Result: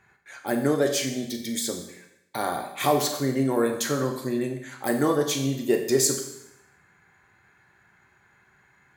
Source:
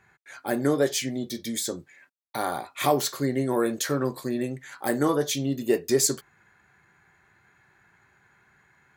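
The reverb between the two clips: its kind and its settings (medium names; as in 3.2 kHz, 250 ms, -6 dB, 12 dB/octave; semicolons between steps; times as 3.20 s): Schroeder reverb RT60 0.83 s, combs from 30 ms, DRR 5.5 dB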